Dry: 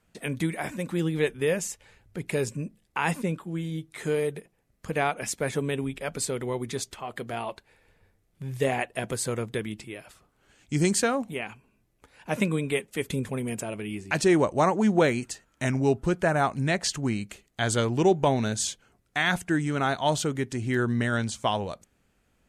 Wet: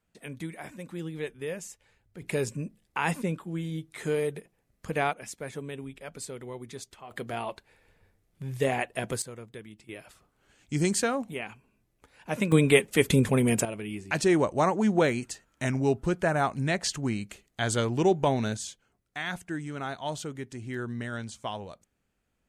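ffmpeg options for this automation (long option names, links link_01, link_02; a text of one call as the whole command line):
ffmpeg -i in.wav -af "asetnsamples=nb_out_samples=441:pad=0,asendcmd='2.22 volume volume -1.5dB;5.13 volume volume -9.5dB;7.11 volume volume -1dB;9.22 volume volume -13dB;9.89 volume volume -2.5dB;12.52 volume volume 7.5dB;13.65 volume volume -2dB;18.57 volume volume -9dB',volume=-9.5dB" out.wav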